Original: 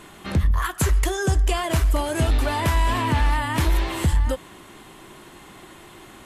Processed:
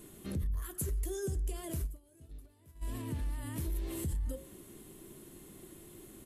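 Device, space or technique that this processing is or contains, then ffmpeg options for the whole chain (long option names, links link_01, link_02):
stacked limiters: -filter_complex "[0:a]bandreject=frequency=60:width_type=h:width=6,bandreject=frequency=120:width_type=h:width=6,bandreject=frequency=180:width_type=h:width=6,bandreject=frequency=240:width_type=h:width=6,bandreject=frequency=300:width_type=h:width=6,bandreject=frequency=360:width_type=h:width=6,bandreject=frequency=420:width_type=h:width=6,bandreject=frequency=480:width_type=h:width=6,bandreject=frequency=540:width_type=h:width=6,alimiter=limit=-17dB:level=0:latency=1:release=166,alimiter=limit=-23.5dB:level=0:latency=1:release=26,asplit=3[link_01][link_02][link_03];[link_01]afade=type=out:start_time=1.86:duration=0.02[link_04];[link_02]agate=range=-24dB:threshold=-26dB:ratio=16:detection=peak,afade=type=in:start_time=1.86:duration=0.02,afade=type=out:start_time=2.81:duration=0.02[link_05];[link_03]afade=type=in:start_time=2.81:duration=0.02[link_06];[link_04][link_05][link_06]amix=inputs=3:normalize=0,firequalizer=gain_entry='entry(400,0);entry(810,-16);entry(11000,6)':delay=0.05:min_phase=1,volume=-5dB"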